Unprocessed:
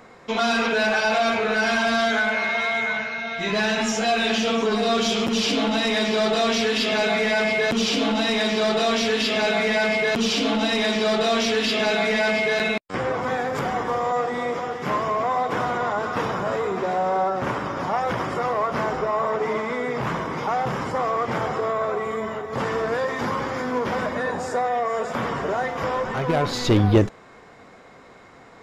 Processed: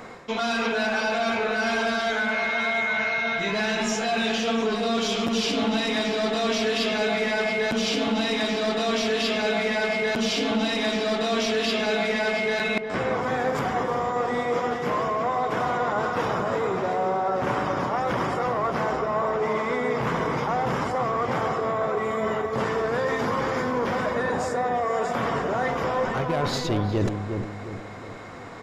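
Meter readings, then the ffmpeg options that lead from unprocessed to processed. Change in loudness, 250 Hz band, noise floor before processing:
-2.0 dB, -2.0 dB, -47 dBFS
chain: -filter_complex "[0:a]areverse,acompressor=threshold=-30dB:ratio=6,areverse,asplit=2[a][b];[b]adelay=357,lowpass=f=1.1k:p=1,volume=-5dB,asplit=2[c][d];[d]adelay=357,lowpass=f=1.1k:p=1,volume=0.46,asplit=2[e][f];[f]adelay=357,lowpass=f=1.1k:p=1,volume=0.46,asplit=2[g][h];[h]adelay=357,lowpass=f=1.1k:p=1,volume=0.46,asplit=2[i][j];[j]adelay=357,lowpass=f=1.1k:p=1,volume=0.46,asplit=2[k][l];[l]adelay=357,lowpass=f=1.1k:p=1,volume=0.46[m];[a][c][e][g][i][k][m]amix=inputs=7:normalize=0,volume=6.5dB"

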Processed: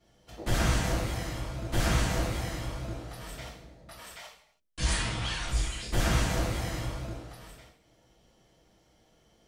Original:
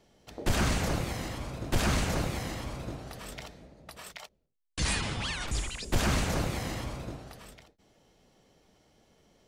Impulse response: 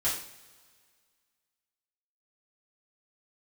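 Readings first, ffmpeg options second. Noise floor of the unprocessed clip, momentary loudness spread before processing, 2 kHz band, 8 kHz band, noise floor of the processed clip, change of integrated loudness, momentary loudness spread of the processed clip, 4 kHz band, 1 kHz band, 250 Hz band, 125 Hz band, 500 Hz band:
-71 dBFS, 19 LU, 0.0 dB, 0.0 dB, -66 dBFS, +1.0 dB, 20 LU, +0.5 dB, 0.0 dB, -1.0 dB, +2.0 dB, 0.0 dB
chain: -filter_complex "[1:a]atrim=start_sample=2205,afade=t=out:st=0.39:d=0.01,atrim=end_sample=17640[a];[0:a][a]afir=irnorm=-1:irlink=0,volume=-7.5dB"

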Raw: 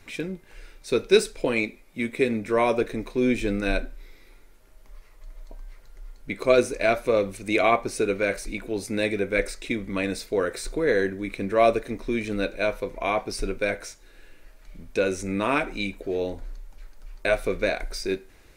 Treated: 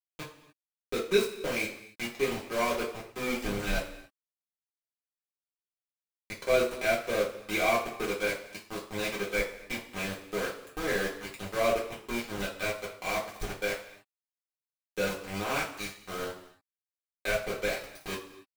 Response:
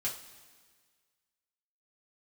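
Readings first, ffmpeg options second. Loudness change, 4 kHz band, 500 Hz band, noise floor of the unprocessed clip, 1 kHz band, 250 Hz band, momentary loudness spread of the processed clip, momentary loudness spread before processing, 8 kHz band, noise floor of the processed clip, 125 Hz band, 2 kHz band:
-6.5 dB, -2.5 dB, -7.5 dB, -52 dBFS, -6.0 dB, -10.0 dB, 12 LU, 11 LU, -2.5 dB, under -85 dBFS, -7.0 dB, -4.0 dB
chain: -filter_complex "[0:a]aeval=exprs='val(0)*gte(abs(val(0)),0.0708)':c=same[a];[1:a]atrim=start_sample=2205,afade=t=out:st=0.35:d=0.01,atrim=end_sample=15876[b];[a][b]afir=irnorm=-1:irlink=0,volume=-8dB"

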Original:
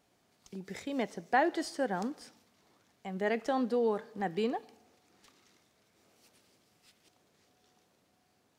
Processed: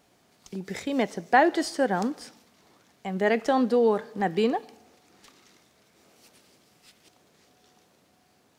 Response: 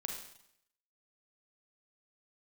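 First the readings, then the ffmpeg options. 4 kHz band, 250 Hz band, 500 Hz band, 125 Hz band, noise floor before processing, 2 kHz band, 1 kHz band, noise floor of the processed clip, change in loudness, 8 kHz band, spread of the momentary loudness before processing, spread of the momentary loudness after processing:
+8.0 dB, +8.0 dB, +8.0 dB, +8.0 dB, -72 dBFS, +8.0 dB, +8.0 dB, -64 dBFS, +8.0 dB, +8.0 dB, 16 LU, 16 LU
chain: -af "bandreject=f=50:t=h:w=6,bandreject=f=100:t=h:w=6,volume=8dB"

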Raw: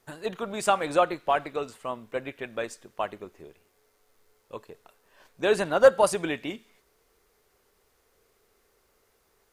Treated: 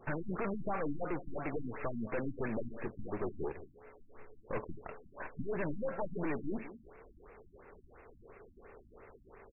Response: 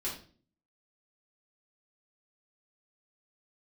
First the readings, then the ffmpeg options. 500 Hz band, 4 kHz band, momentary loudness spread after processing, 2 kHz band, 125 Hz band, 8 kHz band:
-14.0 dB, under -35 dB, 21 LU, -11.5 dB, +1.0 dB, under -40 dB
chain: -af "acompressor=threshold=-33dB:ratio=10,aeval=exprs='(tanh(355*val(0)+0.7)-tanh(0.7))/355':c=same,aecho=1:1:199:0.178,afftfilt=real='re*lt(b*sr/1024,290*pow(2800/290,0.5+0.5*sin(2*PI*2.9*pts/sr)))':imag='im*lt(b*sr/1024,290*pow(2800/290,0.5+0.5*sin(2*PI*2.9*pts/sr)))':win_size=1024:overlap=0.75,volume=17.5dB"

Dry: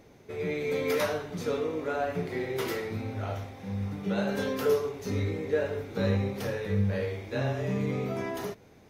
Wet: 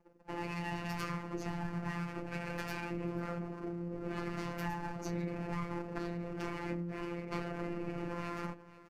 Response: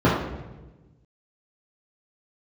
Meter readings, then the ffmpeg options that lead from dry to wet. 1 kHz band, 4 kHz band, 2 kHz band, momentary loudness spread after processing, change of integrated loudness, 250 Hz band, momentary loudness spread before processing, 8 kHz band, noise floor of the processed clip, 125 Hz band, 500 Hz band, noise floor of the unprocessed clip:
-3.5 dB, -9.5 dB, -6.5 dB, 2 LU, -9.0 dB, -6.0 dB, 7 LU, -9.0 dB, -57 dBFS, -8.5 dB, -13.5 dB, -55 dBFS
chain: -filter_complex "[0:a]afftdn=nr=35:nf=-42,aeval=exprs='abs(val(0))':c=same,highpass=48,equalizer=f=280:w=0.92:g=2.5,acrossover=split=130[a][b];[b]acompressor=threshold=-48dB:ratio=2[c];[a][c]amix=inputs=2:normalize=0,superequalizer=8b=0.562:9b=0.562:13b=0.447,asplit=2[d][e];[e]aecho=0:1:488:0.1[f];[d][f]amix=inputs=2:normalize=0,aresample=32000,aresample=44100,acompressor=threshold=-43dB:ratio=4,afftfilt=real='hypot(re,im)*cos(PI*b)':imag='0':win_size=1024:overlap=0.75,volume=11.5dB"

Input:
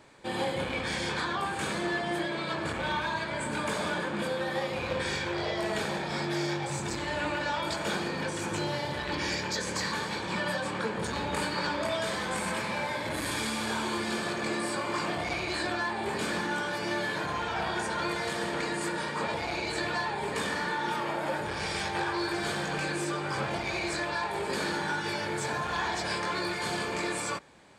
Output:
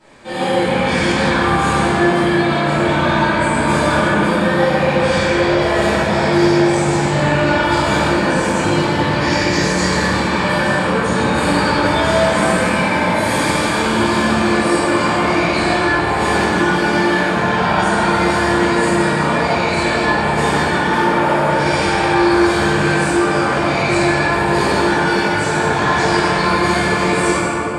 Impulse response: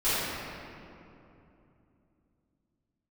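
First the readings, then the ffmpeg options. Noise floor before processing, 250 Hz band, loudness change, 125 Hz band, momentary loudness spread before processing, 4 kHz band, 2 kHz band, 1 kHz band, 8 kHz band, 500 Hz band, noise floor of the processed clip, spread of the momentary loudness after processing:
-35 dBFS, +19.0 dB, +16.0 dB, +18.5 dB, 2 LU, +12.0 dB, +15.0 dB, +16.5 dB, +12.0 dB, +17.0 dB, -18 dBFS, 2 LU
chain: -filter_complex "[1:a]atrim=start_sample=2205,asetrate=24255,aresample=44100[a];[0:a][a]afir=irnorm=-1:irlink=0,volume=-2.5dB"

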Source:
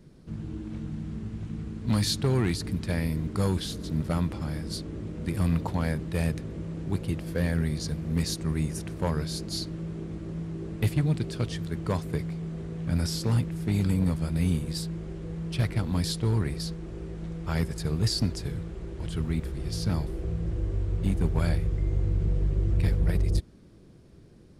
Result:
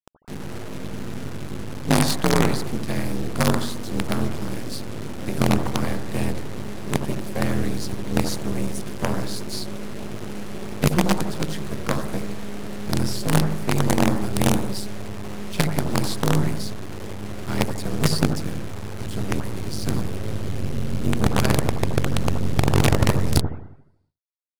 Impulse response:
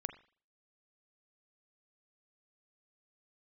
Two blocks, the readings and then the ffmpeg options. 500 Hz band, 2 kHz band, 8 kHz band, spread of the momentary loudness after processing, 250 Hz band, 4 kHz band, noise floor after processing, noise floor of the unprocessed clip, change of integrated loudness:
+8.0 dB, +10.0 dB, +8.5 dB, 14 LU, +5.5 dB, +5.5 dB, -36 dBFS, -52 dBFS, +4.5 dB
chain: -filter_complex "[0:a]afreqshift=41,acrusher=bits=4:dc=4:mix=0:aa=0.000001[a];[1:a]atrim=start_sample=2205,asetrate=24255,aresample=44100[b];[a][b]afir=irnorm=-1:irlink=0,volume=4.5dB"

